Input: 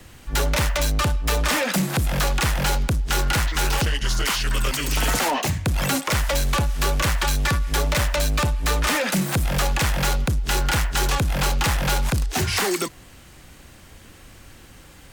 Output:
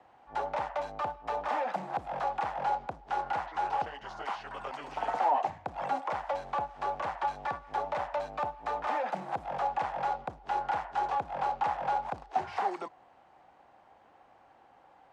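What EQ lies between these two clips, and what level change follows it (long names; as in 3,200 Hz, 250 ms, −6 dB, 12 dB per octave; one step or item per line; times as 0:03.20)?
resonant band-pass 790 Hz, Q 4.8
high-frequency loss of the air 51 metres
+3.0 dB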